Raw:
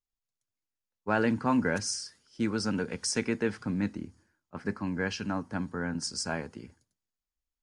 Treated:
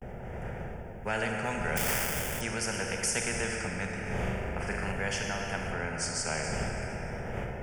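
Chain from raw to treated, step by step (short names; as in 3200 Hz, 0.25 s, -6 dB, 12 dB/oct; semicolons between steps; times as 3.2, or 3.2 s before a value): wind noise 220 Hz -35 dBFS; on a send at -4 dB: reverb RT60 2.8 s, pre-delay 25 ms; on the sum: vibrato 0.43 Hz 80 cents; 5.72–6.44 high shelf 8700 Hz -7 dB; in parallel at -1.5 dB: compressor, threshold -34 dBFS, peak gain reduction 15.5 dB; 1.77–2.41 on the sum: sample-rate reducer 3700 Hz, jitter 20%; fixed phaser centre 1100 Hz, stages 6; 4.02–4.92 flutter echo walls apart 7.1 m, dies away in 0.8 s; spectral compressor 2:1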